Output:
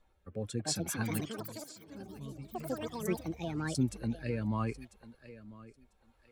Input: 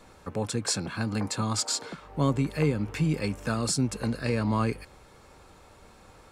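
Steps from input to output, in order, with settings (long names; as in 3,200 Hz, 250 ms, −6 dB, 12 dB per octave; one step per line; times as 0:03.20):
spectral dynamics exaggerated over time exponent 1.5
0:01.20–0:03.75: guitar amp tone stack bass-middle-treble 6-0-2
feedback echo with a high-pass in the loop 995 ms, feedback 26%, high-pass 180 Hz, level −16.5 dB
rotating-speaker cabinet horn 0.75 Hz
delay with pitch and tempo change per echo 404 ms, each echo +6 semitones, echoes 3
level −2 dB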